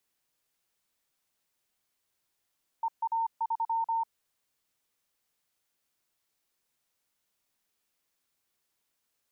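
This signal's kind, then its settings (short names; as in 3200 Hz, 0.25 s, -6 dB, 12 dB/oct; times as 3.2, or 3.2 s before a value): Morse "EA3" 25 wpm 910 Hz -26 dBFS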